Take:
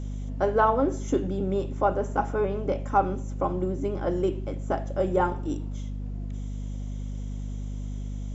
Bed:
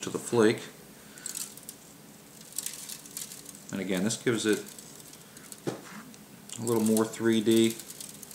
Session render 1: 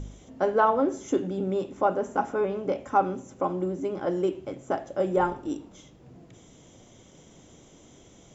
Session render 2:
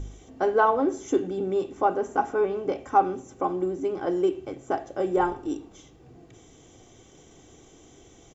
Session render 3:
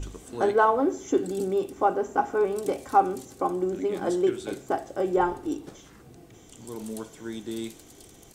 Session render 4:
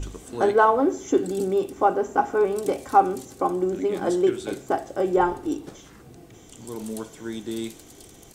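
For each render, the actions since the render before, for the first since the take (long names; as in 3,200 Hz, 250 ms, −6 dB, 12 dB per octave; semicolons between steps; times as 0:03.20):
hum removal 50 Hz, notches 5
comb filter 2.6 ms, depth 45%
mix in bed −11 dB
level +3 dB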